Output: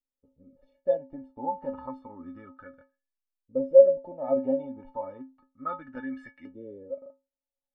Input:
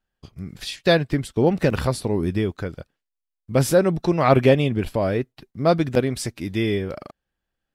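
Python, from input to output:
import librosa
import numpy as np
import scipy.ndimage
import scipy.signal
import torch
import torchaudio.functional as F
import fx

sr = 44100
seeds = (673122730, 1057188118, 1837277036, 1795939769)

y = fx.filter_lfo_lowpass(x, sr, shape='saw_up', hz=0.31, low_hz=420.0, high_hz=1900.0, q=7.7)
y = fx.stiff_resonator(y, sr, f0_hz=260.0, decay_s=0.31, stiffness=0.03)
y = y * 10.0 ** (-4.5 / 20.0)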